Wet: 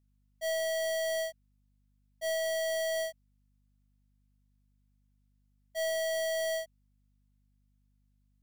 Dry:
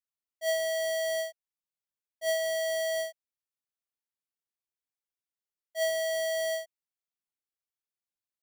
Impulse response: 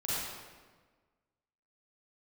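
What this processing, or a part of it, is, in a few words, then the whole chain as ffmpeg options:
valve amplifier with mains hum: -af "aeval=exprs='(tanh(44.7*val(0)+0.1)-tanh(0.1))/44.7':channel_layout=same,aeval=exprs='val(0)+0.000251*(sin(2*PI*50*n/s)+sin(2*PI*2*50*n/s)/2+sin(2*PI*3*50*n/s)/3+sin(2*PI*4*50*n/s)/4+sin(2*PI*5*50*n/s)/5)':channel_layout=same,volume=2.5dB"

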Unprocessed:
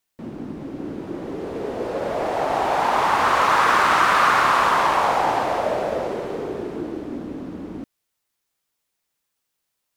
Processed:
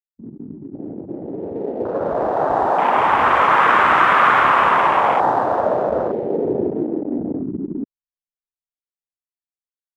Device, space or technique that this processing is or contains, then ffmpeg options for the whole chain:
voice memo with heavy noise removal: -filter_complex "[0:a]afwtdn=0.0631,asettb=1/sr,asplit=3[link_01][link_02][link_03];[link_01]atrim=end=6.264[link_04];[link_02]atrim=start=6.26:end=6.73,asetpts=PTS-STARTPTS,afade=type=in:duration=0.004:curve=qsin,afade=type=out:start_time=0.466:duration=0.004:curve=qsin,tiltshelf=frequency=1400:gain=3[link_05];[link_03]atrim=start=6.726[link_06];[link_04][link_05]acrossfade=duration=0.004:curve1=hsin:curve2=qsin[link_07];[link_07][link_06]acrossfade=duration=0.004:curve1=qsin:curve2=hsin,anlmdn=2.51,dynaudnorm=framelen=230:gausssize=13:maxgain=10dB"

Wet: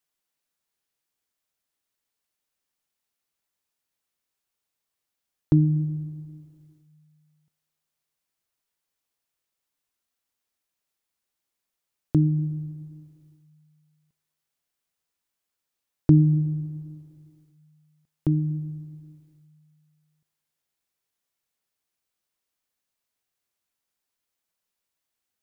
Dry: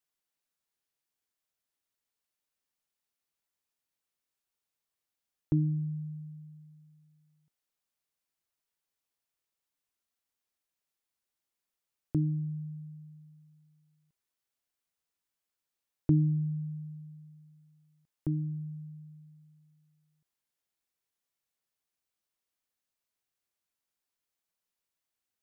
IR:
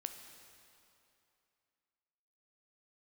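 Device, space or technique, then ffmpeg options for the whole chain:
keyed gated reverb: -filter_complex "[0:a]asplit=3[link_01][link_02][link_03];[1:a]atrim=start_sample=2205[link_04];[link_02][link_04]afir=irnorm=-1:irlink=0[link_05];[link_03]apad=whole_len=1121238[link_06];[link_05][link_06]sidechaingate=range=-30dB:threshold=-57dB:ratio=16:detection=peak,volume=1dB[link_07];[link_01][link_07]amix=inputs=2:normalize=0,volume=4dB"

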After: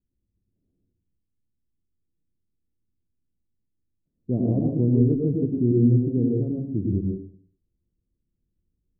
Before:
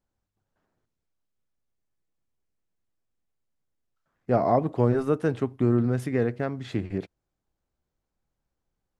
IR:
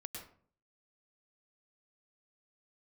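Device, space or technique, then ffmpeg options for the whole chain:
next room: -filter_complex "[0:a]lowpass=frequency=350:width=0.5412,lowpass=frequency=350:width=1.3066[link_01];[1:a]atrim=start_sample=2205[link_02];[link_01][link_02]afir=irnorm=-1:irlink=0,volume=8dB"

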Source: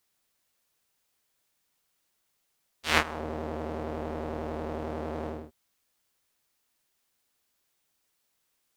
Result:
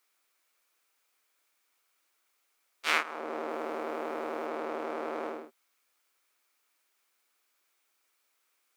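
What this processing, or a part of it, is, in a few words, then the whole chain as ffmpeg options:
laptop speaker: -filter_complex "[0:a]asettb=1/sr,asplit=3[link_01][link_02][link_03];[link_01]atrim=end=3.494[link_04];[link_02]atrim=start=3.49:end=4.46,asetpts=PTS-STARTPTS,afade=type=in:duration=0.004:curve=qsin,afade=type=out:start_time=0.966:duration=0.004:curve=qsin,highshelf=frequency=9500:gain=6[link_05];[link_03]atrim=start=4.456[link_06];[link_04][link_05]acrossfade=duration=0.004:curve1=hsin:curve2=qsin[link_07];[link_07][link_06]acrossfade=duration=0.004:curve1=qsin:curve2=hsin,highpass=frequency=290:width=0.5412,highpass=frequency=290:width=1.3066,equalizer=frequency=1300:width_type=o:width=0.57:gain=7,equalizer=frequency=2300:width_type=o:width=0.28:gain=7,alimiter=limit=-11.5dB:level=0:latency=1:release=388"

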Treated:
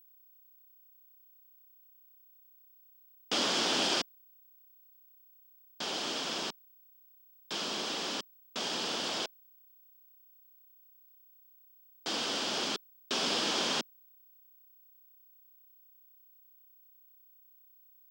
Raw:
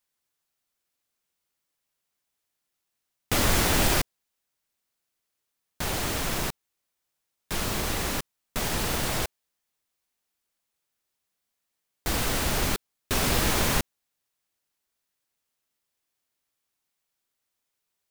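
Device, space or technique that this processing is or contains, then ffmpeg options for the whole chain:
old television with a line whistle: -af "highpass=frequency=220:width=0.5412,highpass=frequency=220:width=1.3066,equalizer=frequency=2000:width_type=q:width=4:gain=-6,equalizer=frequency=3200:width_type=q:width=4:gain=9,equalizer=frequency=5000:width_type=q:width=4:gain=7,lowpass=frequency=7000:width=0.5412,lowpass=frequency=7000:width=1.3066,aeval=exprs='val(0)+0.00251*sin(2*PI*15734*n/s)':channel_layout=same,volume=-6dB"

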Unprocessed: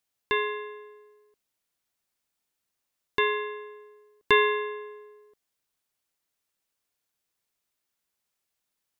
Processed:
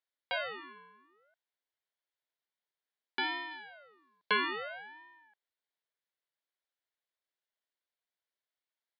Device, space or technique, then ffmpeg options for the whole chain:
voice changer toy: -filter_complex "[0:a]aeval=exprs='val(0)*sin(2*PI*1000*n/s+1000*0.4/0.59*sin(2*PI*0.59*n/s))':channel_layout=same,highpass=490,equalizer=frequency=800:width_type=q:width=4:gain=-4,equalizer=frequency=1200:width_type=q:width=4:gain=-7,equalizer=frequency=2600:width_type=q:width=4:gain=-8,lowpass=frequency=3900:width=0.5412,lowpass=frequency=3900:width=1.3066,asettb=1/sr,asplit=3[link_01][link_02][link_03];[link_01]atrim=end=3.514[link_04];[link_02]atrim=start=3.51:end=4.31,asetpts=PTS-STARTPTS,afade=type=in:duration=0.004:curve=qsin,afade=type=out:start_time=0.796:duration=0.004:curve=qsin,equalizer=frequency=4300:width=2:gain=7.5[link_05];[link_03]atrim=start=4.306[link_06];[link_04][link_05]acrossfade=duration=0.004:curve1=hsin:curve2=qsin[link_07];[link_07][link_06]acrossfade=duration=0.004:curve1=qsin:curve2=hsin,volume=-2dB"

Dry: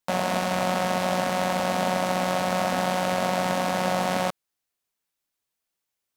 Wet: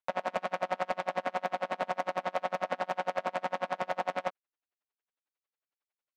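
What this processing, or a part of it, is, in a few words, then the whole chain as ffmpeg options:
helicopter radio: -af "highpass=380,lowpass=2500,aeval=exprs='val(0)*pow(10,-34*(0.5-0.5*cos(2*PI*11*n/s))/20)':channel_layout=same,asoftclip=type=hard:threshold=-20.5dB"

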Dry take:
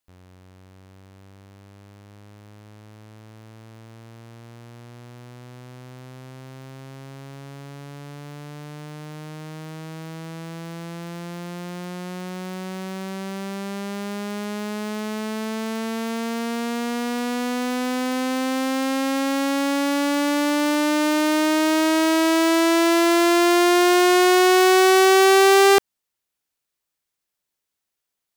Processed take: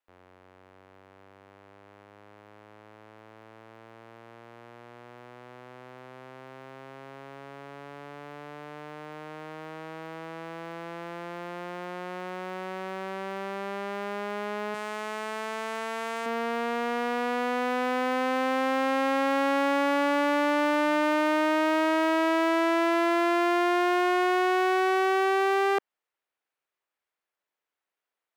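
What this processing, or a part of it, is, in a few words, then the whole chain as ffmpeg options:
DJ mixer with the lows and highs turned down: -filter_complex "[0:a]asettb=1/sr,asplit=3[link_01][link_02][link_03];[link_01]atrim=end=14.744[link_04];[link_02]atrim=start=14.74:end=16.26,asetpts=PTS-STARTPTS,afade=type=in:duration=0.004:curve=qsin,afade=type=out:start_time=1.516:duration=0.004:curve=qsin,equalizer=frequency=125:width_type=o:width=1:gain=11,equalizer=frequency=250:width_type=o:width=1:gain=-11,equalizer=frequency=500:width_type=o:width=1:gain=-3,equalizer=frequency=8000:width_type=o:width=1:gain=8[link_05];[link_03]atrim=start=16.256[link_06];[link_04][link_05]acrossfade=duration=0.004:curve1=hsin:curve2=qsin[link_07];[link_07][link_06]acrossfade=duration=0.004:curve1=qsin:curve2=hsin,acrossover=split=340 2700:gain=0.141 1 0.158[link_08][link_09][link_10];[link_08][link_09][link_10]amix=inputs=3:normalize=0,alimiter=limit=-18dB:level=0:latency=1:release=16,volume=1.5dB"

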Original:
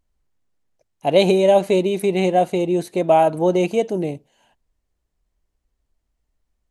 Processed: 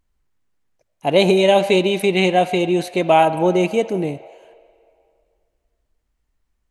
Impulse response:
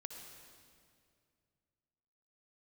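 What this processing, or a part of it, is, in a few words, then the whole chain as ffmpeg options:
filtered reverb send: -filter_complex "[0:a]asettb=1/sr,asplit=3[link_01][link_02][link_03];[link_01]atrim=end=1.374[link_04];[link_02]atrim=start=1.37:end=3.25,asetpts=PTS-STARTPTS,afade=type=in:duration=0.004:curve=qsin,afade=type=out:start_time=1.876:duration=0.004:curve=qsin,equalizer=frequency=3300:width=0.78:gain=7[link_05];[link_03]atrim=start=3.246[link_06];[link_04][link_05]acrossfade=duration=0.004:curve1=hsin:curve2=qsin[link_07];[link_07][link_06]acrossfade=duration=0.004:curve1=qsin:curve2=hsin,asplit=2[link_08][link_09];[link_09]highpass=frequency=600:width=0.5412,highpass=frequency=600:width=1.3066,lowpass=3100[link_10];[1:a]atrim=start_sample=2205[link_11];[link_10][link_11]afir=irnorm=-1:irlink=0,volume=-2.5dB[link_12];[link_08][link_12]amix=inputs=2:normalize=0,volume=1.5dB"

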